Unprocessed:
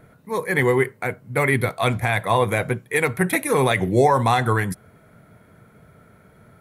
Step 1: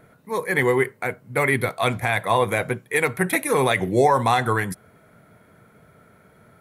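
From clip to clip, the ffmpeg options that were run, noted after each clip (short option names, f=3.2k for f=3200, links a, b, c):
-af "lowshelf=f=160:g=-7"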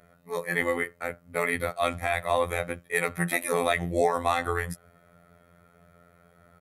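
-af "aecho=1:1:1.6:0.42,afftfilt=real='hypot(re,im)*cos(PI*b)':imag='0':win_size=2048:overlap=0.75,volume=-2.5dB"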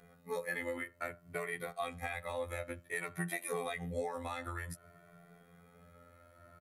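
-filter_complex "[0:a]acompressor=threshold=-33dB:ratio=6,asplit=2[a][b];[b]adelay=2.1,afreqshift=0.54[c];[a][c]amix=inputs=2:normalize=1,volume=1dB"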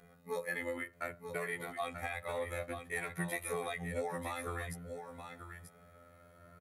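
-af "aecho=1:1:936:0.398"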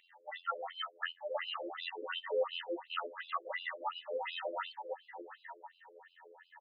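-af "afftfilt=real='real(if(between(b,1,1008),(2*floor((b-1)/48)+1)*48-b,b),0)':imag='imag(if(between(b,1,1008),(2*floor((b-1)/48)+1)*48-b,b),0)*if(between(b,1,1008),-1,1)':win_size=2048:overlap=0.75,afftfilt=real='re*between(b*sr/1024,400*pow(3600/400,0.5+0.5*sin(2*PI*2.8*pts/sr))/1.41,400*pow(3600/400,0.5+0.5*sin(2*PI*2.8*pts/sr))*1.41)':imag='im*between(b*sr/1024,400*pow(3600/400,0.5+0.5*sin(2*PI*2.8*pts/sr))/1.41,400*pow(3600/400,0.5+0.5*sin(2*PI*2.8*pts/sr))*1.41)':win_size=1024:overlap=0.75,volume=7dB"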